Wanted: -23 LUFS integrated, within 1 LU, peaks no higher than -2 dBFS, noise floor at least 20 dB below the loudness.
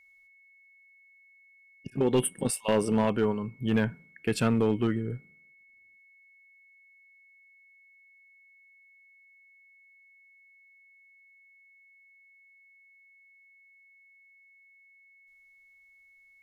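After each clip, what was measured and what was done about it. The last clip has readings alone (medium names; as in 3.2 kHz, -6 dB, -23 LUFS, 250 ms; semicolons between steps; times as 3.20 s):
clipped samples 0.3%; clipping level -17.5 dBFS; steady tone 2.2 kHz; tone level -57 dBFS; loudness -28.0 LUFS; peak level -17.5 dBFS; loudness target -23.0 LUFS
-> clip repair -17.5 dBFS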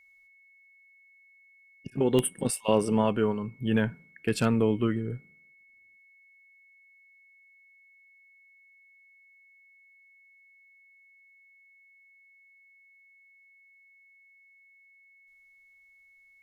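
clipped samples 0.0%; steady tone 2.2 kHz; tone level -57 dBFS
-> band-stop 2.2 kHz, Q 30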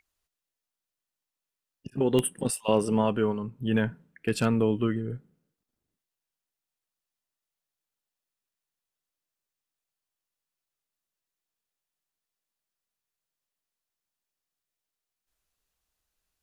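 steady tone not found; loudness -27.5 LUFS; peak level -10.0 dBFS; loudness target -23.0 LUFS
-> trim +4.5 dB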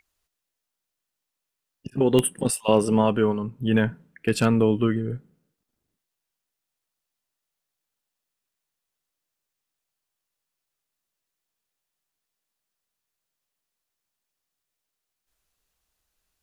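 loudness -23.0 LUFS; peak level -5.5 dBFS; noise floor -84 dBFS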